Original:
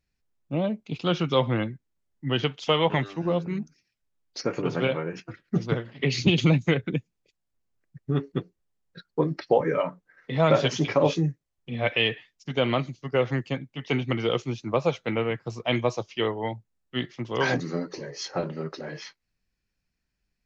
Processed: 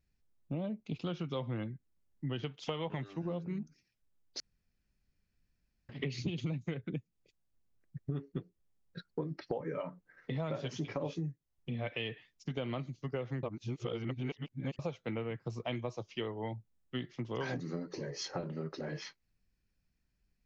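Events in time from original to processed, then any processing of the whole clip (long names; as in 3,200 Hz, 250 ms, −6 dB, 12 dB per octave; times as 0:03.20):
0:04.40–0:05.89: fill with room tone
0:13.43–0:14.79: reverse
whole clip: low-shelf EQ 370 Hz +7 dB; downward compressor 5 to 1, threshold −31 dBFS; level −4.5 dB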